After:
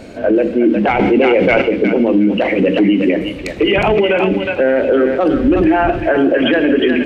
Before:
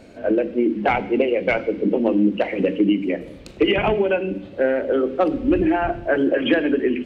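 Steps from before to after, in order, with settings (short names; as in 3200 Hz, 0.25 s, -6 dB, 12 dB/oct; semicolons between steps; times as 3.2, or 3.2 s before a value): thinning echo 0.362 s, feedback 26%, high-pass 1100 Hz, level -5 dB; maximiser +15 dB; 0.99–1.62 fast leveller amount 70%; gain -4 dB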